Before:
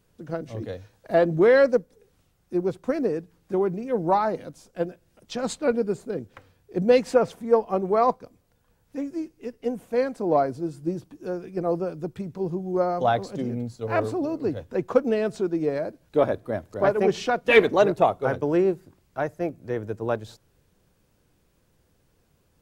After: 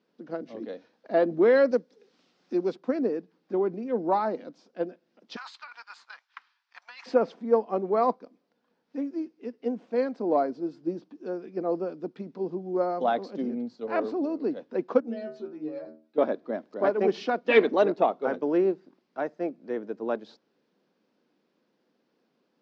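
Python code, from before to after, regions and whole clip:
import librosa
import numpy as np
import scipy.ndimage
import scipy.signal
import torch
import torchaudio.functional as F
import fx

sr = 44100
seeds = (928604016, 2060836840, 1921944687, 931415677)

y = fx.chain(x, sr, fx.high_shelf(hz=2500.0, db=11.0),
    fx.band_squash(depth_pct=40), at=(1.71, 2.76))
y = fx.chain(y, sr, fx.steep_highpass(hz=950.0, slope=48),
    fx.leveller(passes=1),
    fx.over_compress(threshold_db=-38.0, ratio=-1.0), at=(5.36, 7.06))
y = fx.chain(y, sr, fx.low_shelf(hz=160.0, db=6.5),
    fx.stiff_resonator(f0_hz=76.0, decay_s=0.42, stiffness=0.002), at=(15.0, 16.18))
y = scipy.signal.sosfilt(scipy.signal.ellip(3, 1.0, 40, [230.0, 5000.0], 'bandpass', fs=sr, output='sos'), y)
y = fx.low_shelf(y, sr, hz=440.0, db=6.5)
y = F.gain(torch.from_numpy(y), -5.0).numpy()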